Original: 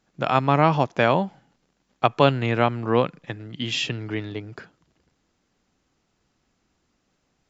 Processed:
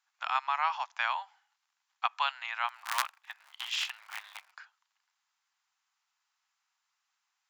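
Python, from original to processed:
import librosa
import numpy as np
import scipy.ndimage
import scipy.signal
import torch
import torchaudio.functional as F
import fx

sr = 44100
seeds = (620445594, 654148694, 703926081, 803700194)

y = fx.cycle_switch(x, sr, every=3, mode='inverted', at=(2.67, 4.5), fade=0.02)
y = scipy.signal.sosfilt(scipy.signal.butter(8, 860.0, 'highpass', fs=sr, output='sos'), y)
y = y * librosa.db_to_amplitude(-6.5)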